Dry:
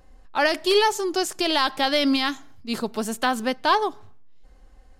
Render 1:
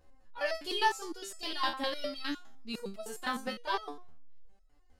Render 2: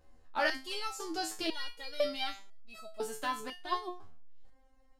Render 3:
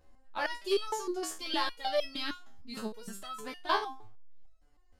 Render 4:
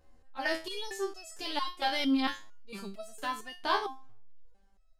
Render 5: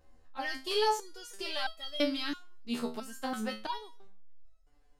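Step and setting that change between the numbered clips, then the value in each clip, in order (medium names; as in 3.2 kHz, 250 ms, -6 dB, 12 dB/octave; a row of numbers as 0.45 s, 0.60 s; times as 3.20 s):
resonator arpeggio, rate: 9.8 Hz, 2 Hz, 6.5 Hz, 4.4 Hz, 3 Hz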